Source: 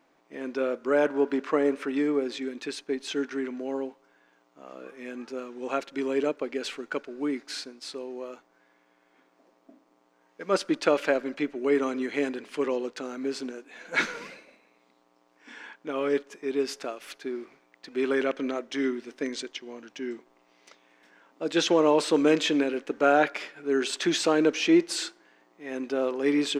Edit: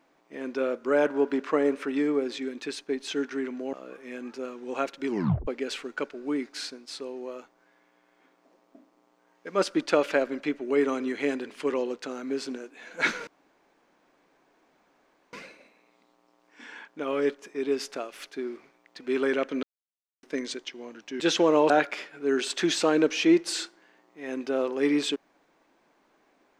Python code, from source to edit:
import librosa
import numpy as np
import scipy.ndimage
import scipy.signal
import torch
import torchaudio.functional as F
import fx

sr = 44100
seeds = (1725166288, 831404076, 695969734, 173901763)

y = fx.edit(x, sr, fx.cut(start_s=3.73, length_s=0.94),
    fx.tape_stop(start_s=6.02, length_s=0.39),
    fx.insert_room_tone(at_s=14.21, length_s=2.06),
    fx.silence(start_s=18.51, length_s=0.6),
    fx.cut(start_s=20.08, length_s=1.43),
    fx.cut(start_s=22.01, length_s=1.12), tone=tone)